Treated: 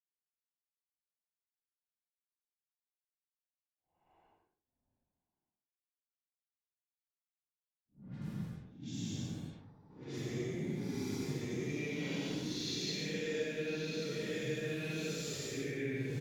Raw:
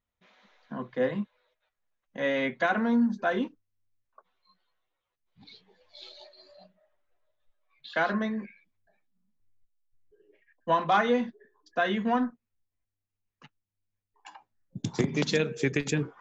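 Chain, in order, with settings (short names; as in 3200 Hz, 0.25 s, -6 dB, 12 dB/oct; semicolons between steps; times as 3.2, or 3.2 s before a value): bell 1000 Hz -7.5 dB 1.2 oct; notches 50/100/150/200/250/300/350 Hz; on a send: feedback echo 0.137 s, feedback 30%, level -6 dB; on the sum: sample gate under -43.5 dBFS; level quantiser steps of 19 dB; Paulstretch 8.4×, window 0.10 s, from 13.77; low-pass opened by the level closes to 400 Hz, open at -38.5 dBFS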